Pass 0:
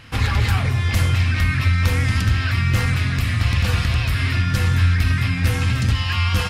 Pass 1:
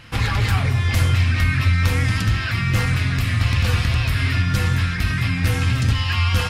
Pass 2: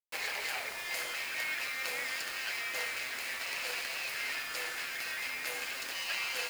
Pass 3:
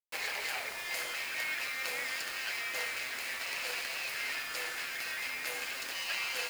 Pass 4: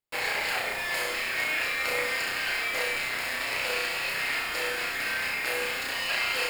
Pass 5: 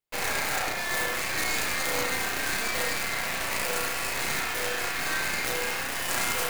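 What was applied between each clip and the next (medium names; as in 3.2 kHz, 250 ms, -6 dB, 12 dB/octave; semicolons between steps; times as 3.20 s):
flange 0.4 Hz, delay 5.6 ms, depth 2.7 ms, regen -65%; trim +4.5 dB
comb filter that takes the minimum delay 0.44 ms; high-pass 500 Hz 24 dB/octave; bit crusher 6-bit; trim -8.5 dB
no audible change
tilt EQ -1.5 dB/octave; band-stop 6 kHz, Q 5.4; flutter echo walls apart 5.6 m, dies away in 0.55 s; trim +7 dB
tracing distortion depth 0.49 ms; on a send at -2 dB: Chebyshev high-pass 670 Hz, order 10 + reverberation, pre-delay 57 ms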